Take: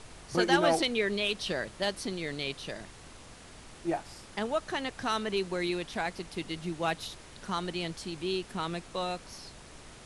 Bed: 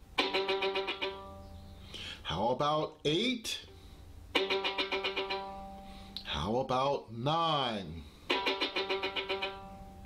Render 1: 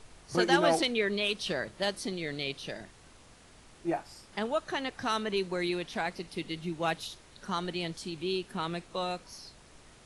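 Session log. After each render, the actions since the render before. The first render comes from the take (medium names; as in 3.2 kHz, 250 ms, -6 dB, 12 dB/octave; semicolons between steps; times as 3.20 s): noise print and reduce 6 dB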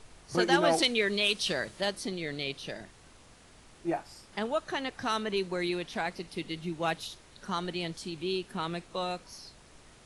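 0.78–1.81 s: treble shelf 2.9 kHz +7.5 dB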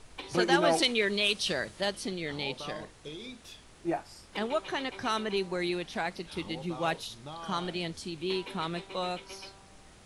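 add bed -12.5 dB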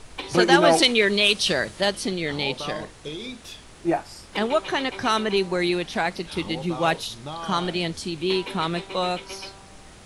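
trim +8.5 dB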